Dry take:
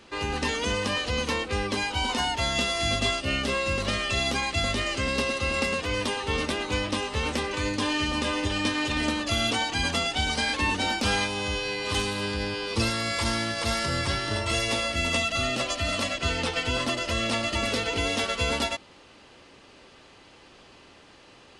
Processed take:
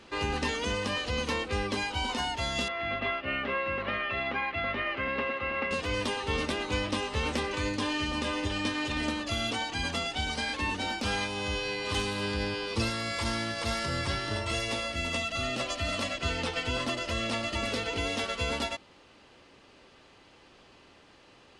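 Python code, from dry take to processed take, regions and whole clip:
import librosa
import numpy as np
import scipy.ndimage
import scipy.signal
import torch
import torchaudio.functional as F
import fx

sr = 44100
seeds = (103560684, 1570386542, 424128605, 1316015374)

y = fx.chain(x, sr, fx.lowpass(hz=2200.0, slope=24),
    fx.tilt_eq(slope=3.0), at=(2.68, 5.71))
y = fx.rider(y, sr, range_db=10, speed_s=0.5)
y = fx.high_shelf(y, sr, hz=6900.0, db=-5.0)
y = y * librosa.db_to_amplitude(-3.5)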